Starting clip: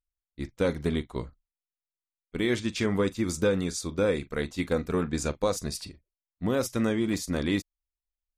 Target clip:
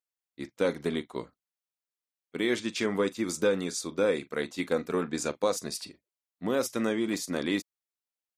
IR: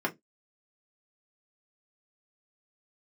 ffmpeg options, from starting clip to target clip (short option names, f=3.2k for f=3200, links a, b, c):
-af "highpass=240"